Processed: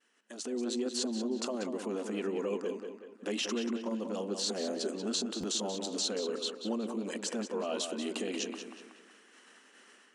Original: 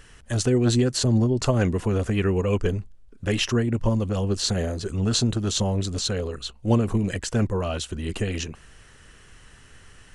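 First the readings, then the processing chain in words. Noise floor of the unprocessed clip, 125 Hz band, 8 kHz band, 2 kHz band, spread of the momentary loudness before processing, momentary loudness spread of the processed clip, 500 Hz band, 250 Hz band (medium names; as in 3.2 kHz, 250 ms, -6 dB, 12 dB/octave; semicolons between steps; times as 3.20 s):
-51 dBFS, -28.5 dB, -7.0 dB, -10.5 dB, 9 LU, 7 LU, -8.0 dB, -10.5 dB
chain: compression 16:1, threshold -34 dBFS, peak gain reduction 20 dB; transient shaper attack -4 dB, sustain +4 dB; low-pass 9.7 kHz 12 dB/octave; expander -39 dBFS; level rider gain up to 12.5 dB; brick-wall FIR high-pass 200 Hz; tape echo 185 ms, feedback 44%, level -6 dB, low-pass 4.3 kHz; dynamic bell 1.8 kHz, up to -6 dB, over -48 dBFS, Q 1.4; buffer glitch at 5.40 s, samples 512, times 2; trim -6 dB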